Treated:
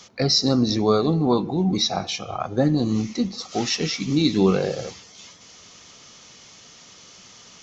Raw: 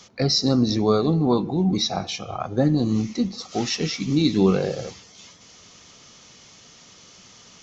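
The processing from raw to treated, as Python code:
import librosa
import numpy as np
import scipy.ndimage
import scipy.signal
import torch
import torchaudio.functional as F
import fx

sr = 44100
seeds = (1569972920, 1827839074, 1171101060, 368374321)

y = fx.low_shelf(x, sr, hz=350.0, db=-3.5)
y = y * librosa.db_to_amplitude(2.0)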